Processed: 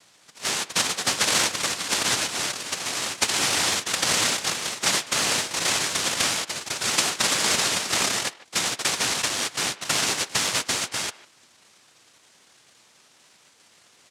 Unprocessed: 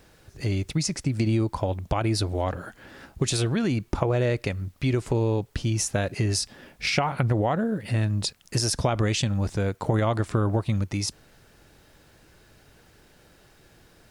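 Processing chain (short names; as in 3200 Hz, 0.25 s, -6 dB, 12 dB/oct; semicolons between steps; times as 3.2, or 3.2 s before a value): echoes that change speed 0.445 s, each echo +6 st, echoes 2, each echo -6 dB; noise vocoder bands 1; speakerphone echo 0.15 s, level -18 dB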